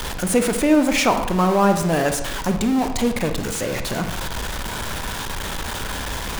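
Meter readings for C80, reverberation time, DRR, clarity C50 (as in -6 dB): 11.0 dB, 0.90 s, 7.0 dB, 8.5 dB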